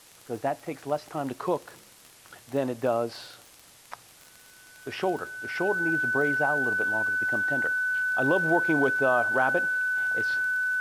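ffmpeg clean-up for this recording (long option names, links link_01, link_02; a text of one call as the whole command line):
ffmpeg -i in.wav -af "adeclick=threshold=4,bandreject=frequency=1500:width=30,afwtdn=0.0025" out.wav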